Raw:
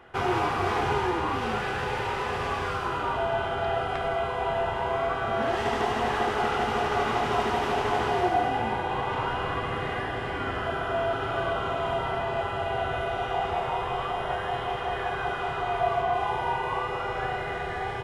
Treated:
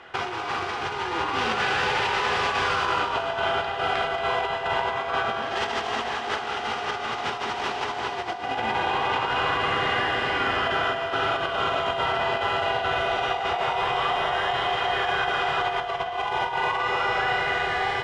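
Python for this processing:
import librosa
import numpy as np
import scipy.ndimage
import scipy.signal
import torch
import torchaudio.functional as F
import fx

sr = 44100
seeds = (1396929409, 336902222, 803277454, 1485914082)

p1 = fx.tilt_eq(x, sr, slope=2.5)
p2 = fx.over_compress(p1, sr, threshold_db=-30.0, ratio=-0.5)
p3 = scipy.signal.sosfilt(scipy.signal.cheby1(2, 1.0, 4900.0, 'lowpass', fs=sr, output='sos'), p2)
p4 = p3 + fx.echo_feedback(p3, sr, ms=227, feedback_pct=54, wet_db=-11, dry=0)
y = p4 * librosa.db_to_amplitude(5.0)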